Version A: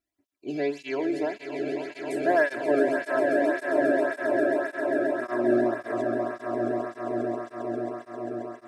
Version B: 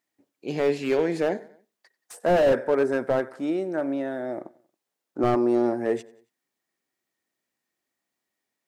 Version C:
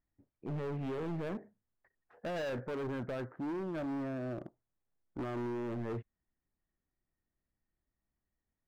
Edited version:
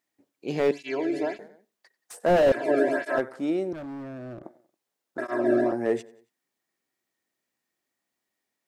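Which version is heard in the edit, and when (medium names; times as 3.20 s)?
B
0.71–1.39 s: from A
2.52–3.18 s: from A
3.73–4.43 s: from C
5.18–5.72 s: from A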